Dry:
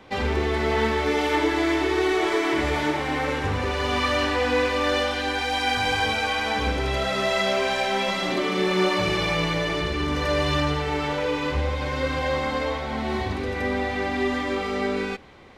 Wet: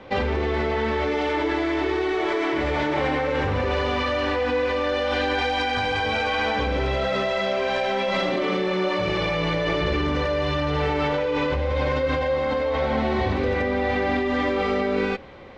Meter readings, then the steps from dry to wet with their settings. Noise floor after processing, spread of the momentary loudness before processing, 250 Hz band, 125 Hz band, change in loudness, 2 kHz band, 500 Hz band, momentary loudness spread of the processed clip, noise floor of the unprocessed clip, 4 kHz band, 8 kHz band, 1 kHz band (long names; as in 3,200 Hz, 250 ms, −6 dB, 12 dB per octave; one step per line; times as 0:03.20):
−25 dBFS, 4 LU, +0.5 dB, +0.5 dB, +0.5 dB, −0.5 dB, +2.0 dB, 1 LU, −29 dBFS, −2.5 dB, can't be measured, 0.0 dB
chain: parametric band 540 Hz +8.5 dB 0.21 octaves
in parallel at +1.5 dB: compressor whose output falls as the input rises −26 dBFS, ratio −0.5
on the sum: high-frequency loss of the air 130 metres
level −4.5 dB